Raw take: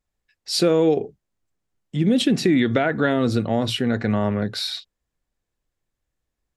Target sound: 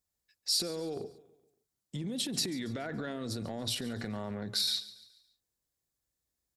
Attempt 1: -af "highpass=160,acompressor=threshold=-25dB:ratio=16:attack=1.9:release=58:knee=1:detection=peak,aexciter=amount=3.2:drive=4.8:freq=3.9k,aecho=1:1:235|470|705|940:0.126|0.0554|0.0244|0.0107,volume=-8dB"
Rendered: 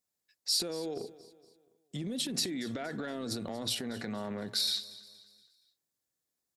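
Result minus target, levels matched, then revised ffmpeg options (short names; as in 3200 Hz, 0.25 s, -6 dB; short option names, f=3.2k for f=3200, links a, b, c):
echo 94 ms late; 125 Hz band -3.5 dB
-af "highpass=50,acompressor=threshold=-25dB:ratio=16:attack=1.9:release=58:knee=1:detection=peak,aexciter=amount=3.2:drive=4.8:freq=3.9k,aecho=1:1:141|282|423|564:0.126|0.0554|0.0244|0.0107,volume=-8dB"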